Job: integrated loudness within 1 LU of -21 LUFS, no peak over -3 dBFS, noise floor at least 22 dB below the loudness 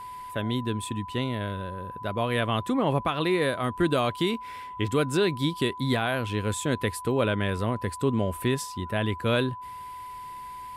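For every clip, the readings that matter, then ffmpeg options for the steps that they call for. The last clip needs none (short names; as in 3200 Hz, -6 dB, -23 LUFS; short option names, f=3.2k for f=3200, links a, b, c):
steady tone 1000 Hz; tone level -37 dBFS; loudness -27.5 LUFS; peak -13.5 dBFS; loudness target -21.0 LUFS
-> -af "bandreject=f=1k:w=30"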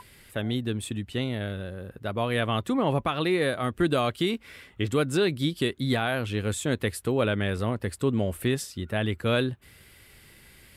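steady tone none; loudness -27.5 LUFS; peak -14.0 dBFS; loudness target -21.0 LUFS
-> -af "volume=6.5dB"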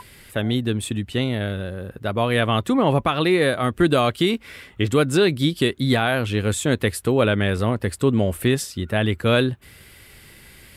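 loudness -21.0 LUFS; peak -7.5 dBFS; noise floor -48 dBFS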